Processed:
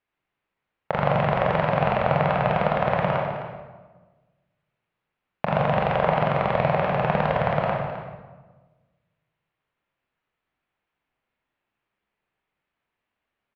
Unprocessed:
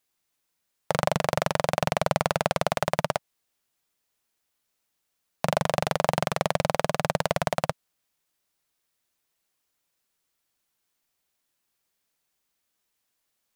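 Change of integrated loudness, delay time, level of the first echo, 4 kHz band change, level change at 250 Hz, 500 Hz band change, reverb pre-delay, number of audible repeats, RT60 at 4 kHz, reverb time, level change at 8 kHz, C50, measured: +3.5 dB, 260 ms, −12.5 dB, −5.0 dB, +5.0 dB, +4.0 dB, 22 ms, 1, 1.0 s, 1.3 s, below −25 dB, 0.5 dB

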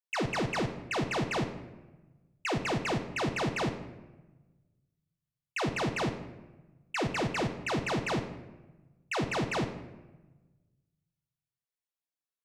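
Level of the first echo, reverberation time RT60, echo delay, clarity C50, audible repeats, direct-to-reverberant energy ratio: no echo audible, 1.2 s, no echo audible, 10.0 dB, no echo audible, 6.0 dB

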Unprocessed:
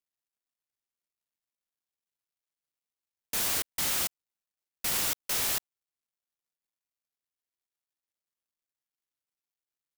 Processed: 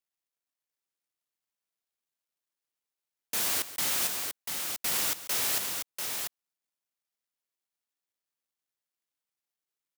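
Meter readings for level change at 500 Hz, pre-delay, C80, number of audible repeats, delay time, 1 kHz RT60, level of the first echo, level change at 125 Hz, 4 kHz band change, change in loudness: +1.0 dB, no reverb audible, no reverb audible, 2, 141 ms, no reverb audible, −14.5 dB, −3.0 dB, +1.5 dB, −0.5 dB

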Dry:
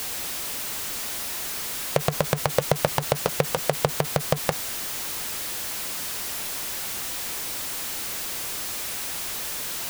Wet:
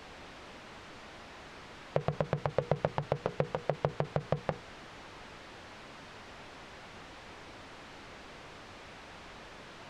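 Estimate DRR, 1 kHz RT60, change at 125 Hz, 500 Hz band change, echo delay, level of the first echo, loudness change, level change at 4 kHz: no reverb audible, no reverb audible, −6.5 dB, −7.5 dB, no echo audible, no echo audible, −12.5 dB, −18.5 dB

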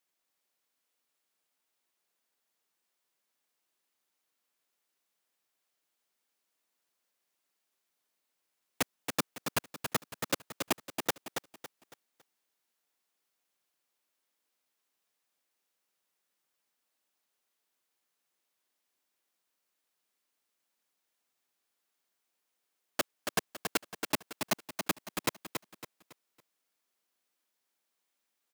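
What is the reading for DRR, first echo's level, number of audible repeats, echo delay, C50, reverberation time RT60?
no reverb audible, −6.0 dB, 4, 278 ms, no reverb audible, no reverb audible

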